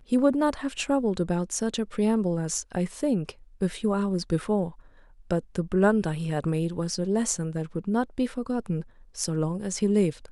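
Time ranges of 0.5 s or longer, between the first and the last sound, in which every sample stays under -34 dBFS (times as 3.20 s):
4.70–5.31 s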